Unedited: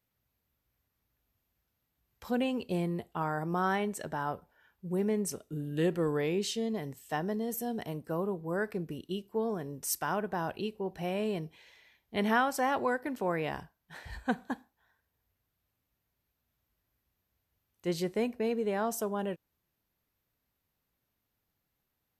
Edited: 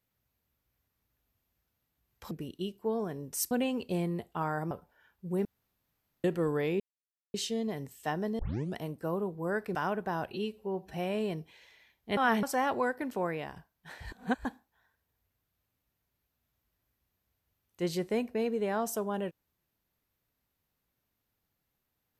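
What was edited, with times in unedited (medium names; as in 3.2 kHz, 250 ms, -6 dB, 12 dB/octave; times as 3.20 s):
3.51–4.31 s: delete
5.05–5.84 s: room tone
6.40 s: insert silence 0.54 s
7.45 s: tape start 0.37 s
8.81–10.01 s: move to 2.31 s
10.57–10.99 s: stretch 1.5×
12.22–12.48 s: reverse
13.21–13.61 s: fade out, to -8 dB
14.17–14.50 s: reverse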